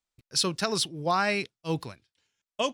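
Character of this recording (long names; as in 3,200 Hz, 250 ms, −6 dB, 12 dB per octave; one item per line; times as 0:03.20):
background noise floor −94 dBFS
spectral slope −3.0 dB per octave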